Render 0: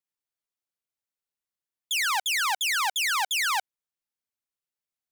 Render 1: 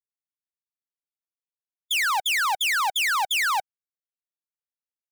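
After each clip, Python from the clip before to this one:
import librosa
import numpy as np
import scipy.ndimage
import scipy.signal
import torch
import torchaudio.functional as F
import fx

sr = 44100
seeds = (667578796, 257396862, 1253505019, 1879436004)

y = fx.bin_expand(x, sr, power=2.0)
y = fx.leveller(y, sr, passes=2)
y = y * 10.0 ** (2.5 / 20.0)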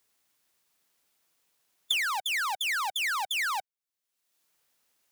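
y = fx.low_shelf(x, sr, hz=110.0, db=-8.0)
y = fx.band_squash(y, sr, depth_pct=100)
y = y * 10.0 ** (-7.0 / 20.0)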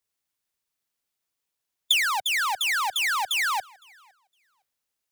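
y = fx.echo_feedback(x, sr, ms=511, feedback_pct=34, wet_db=-23.0)
y = fx.band_widen(y, sr, depth_pct=40)
y = y * 10.0 ** (4.5 / 20.0)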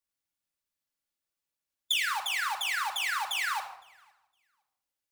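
y = fx.room_shoebox(x, sr, seeds[0], volume_m3=2100.0, walls='furnished', distance_m=2.4)
y = y * 10.0 ** (-8.0 / 20.0)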